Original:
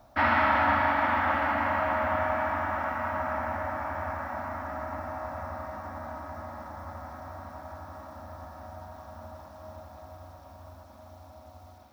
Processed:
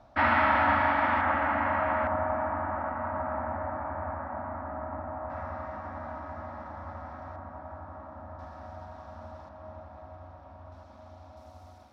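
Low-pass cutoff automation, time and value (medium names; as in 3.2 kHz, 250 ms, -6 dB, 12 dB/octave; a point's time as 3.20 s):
4.4 kHz
from 1.21 s 2.5 kHz
from 2.07 s 1.2 kHz
from 5.30 s 3.2 kHz
from 7.36 s 1.7 kHz
from 8.39 s 4.5 kHz
from 9.49 s 2.4 kHz
from 10.72 s 4.6 kHz
from 11.37 s 9.1 kHz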